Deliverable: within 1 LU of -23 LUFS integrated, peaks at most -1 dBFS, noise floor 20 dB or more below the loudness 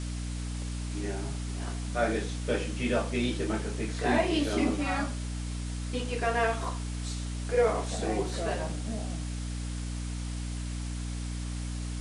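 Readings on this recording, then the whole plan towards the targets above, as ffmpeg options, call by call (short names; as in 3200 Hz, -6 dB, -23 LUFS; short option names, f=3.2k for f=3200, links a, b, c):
hum 60 Hz; harmonics up to 300 Hz; hum level -32 dBFS; noise floor -35 dBFS; noise floor target -52 dBFS; loudness -32.0 LUFS; peak -13.0 dBFS; loudness target -23.0 LUFS
-> -af "bandreject=f=60:t=h:w=4,bandreject=f=120:t=h:w=4,bandreject=f=180:t=h:w=4,bandreject=f=240:t=h:w=4,bandreject=f=300:t=h:w=4"
-af "afftdn=nr=17:nf=-35"
-af "volume=9dB"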